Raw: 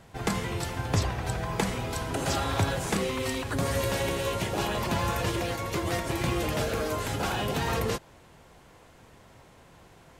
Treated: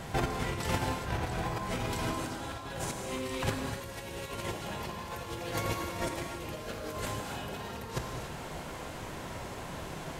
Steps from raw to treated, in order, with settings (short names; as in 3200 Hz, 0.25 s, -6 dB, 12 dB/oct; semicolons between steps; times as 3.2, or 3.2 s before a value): notches 60/120 Hz; negative-ratio compressor -37 dBFS, ratio -0.5; non-linear reverb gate 0.32 s flat, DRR 2.5 dB; gain +2 dB